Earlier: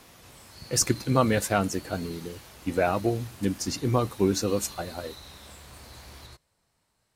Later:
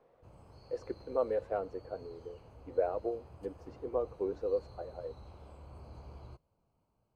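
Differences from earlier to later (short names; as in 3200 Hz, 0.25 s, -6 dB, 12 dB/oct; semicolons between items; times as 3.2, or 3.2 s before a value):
speech: add ladder band-pass 540 Hz, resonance 60%; background: add running mean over 24 samples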